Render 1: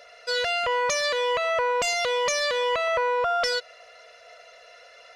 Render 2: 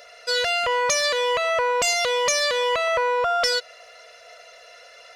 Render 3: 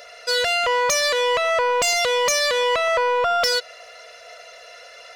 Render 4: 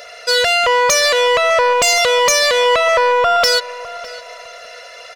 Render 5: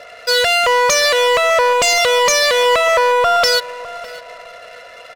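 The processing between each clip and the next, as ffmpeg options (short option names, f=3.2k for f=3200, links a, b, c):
-af "highshelf=f=6.2k:g=8.5,volume=2dB"
-af "asoftclip=type=tanh:threshold=-18dB,volume=4dB"
-filter_complex "[0:a]asplit=2[a][b];[b]adelay=607,lowpass=f=2.9k:p=1,volume=-16dB,asplit=2[c][d];[d]adelay=607,lowpass=f=2.9k:p=1,volume=0.33,asplit=2[e][f];[f]adelay=607,lowpass=f=2.9k:p=1,volume=0.33[g];[a][c][e][g]amix=inputs=4:normalize=0,volume=6.5dB"
-af "adynamicsmooth=sensitivity=7.5:basefreq=1.2k"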